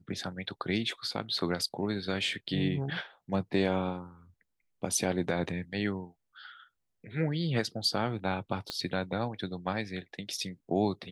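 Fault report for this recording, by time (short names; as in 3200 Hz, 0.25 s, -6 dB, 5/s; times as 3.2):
8.7 pop -19 dBFS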